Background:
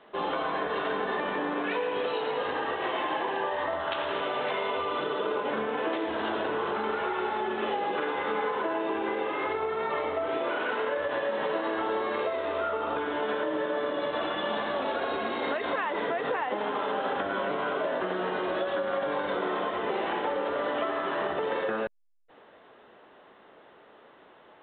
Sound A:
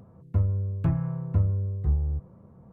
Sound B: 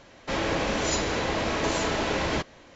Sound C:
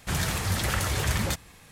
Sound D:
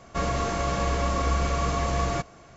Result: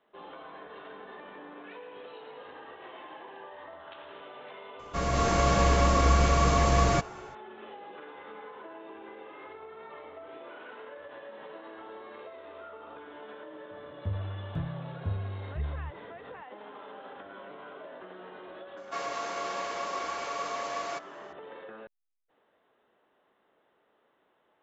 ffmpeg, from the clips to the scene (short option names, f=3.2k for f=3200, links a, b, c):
-filter_complex "[4:a]asplit=2[a][b];[0:a]volume=-16dB[c];[a]dynaudnorm=f=140:g=5:m=8.5dB[d];[b]highpass=580,lowpass=6.3k[e];[d]atrim=end=2.56,asetpts=PTS-STARTPTS,volume=-5.5dB,afade=t=in:d=0.004:c=hsin,afade=t=out:st=2.556:d=0.004:c=hsin,adelay=4790[f];[1:a]atrim=end=2.72,asetpts=PTS-STARTPTS,volume=-9.5dB,afade=t=in:d=0.004:c=hsin,afade=t=out:st=2.716:d=0.004:c=hsin,adelay=13710[g];[e]atrim=end=2.56,asetpts=PTS-STARTPTS,volume=-4.5dB,afade=t=in:d=0.004:c=hsin,afade=t=out:st=2.556:d=0.004:c=hsin,adelay=18770[h];[c][f][g][h]amix=inputs=4:normalize=0"